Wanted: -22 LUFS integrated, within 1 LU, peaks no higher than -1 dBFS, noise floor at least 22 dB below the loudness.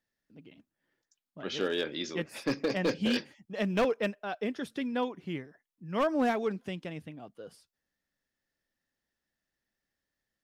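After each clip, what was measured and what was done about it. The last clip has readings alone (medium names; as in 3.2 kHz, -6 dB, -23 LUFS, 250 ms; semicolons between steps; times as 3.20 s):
clipped samples 0.7%; clipping level -22.0 dBFS; loudness -32.5 LUFS; peak level -22.0 dBFS; loudness target -22.0 LUFS
-> clip repair -22 dBFS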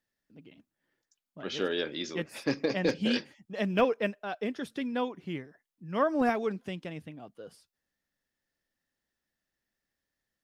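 clipped samples 0.0%; loudness -31.5 LUFS; peak level -13.0 dBFS; loudness target -22.0 LUFS
-> trim +9.5 dB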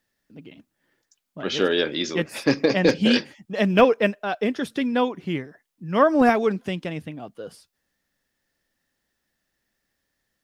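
loudness -22.0 LUFS; peak level -3.5 dBFS; noise floor -78 dBFS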